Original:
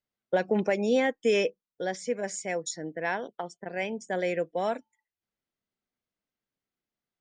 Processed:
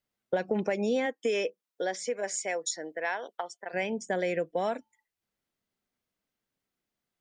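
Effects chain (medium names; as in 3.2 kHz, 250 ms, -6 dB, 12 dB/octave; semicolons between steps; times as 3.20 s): compression 3:1, threshold -31 dBFS, peak gain reduction 8.5 dB; 1.05–3.73 s: high-pass 230 Hz -> 720 Hz 12 dB/octave; trim +4 dB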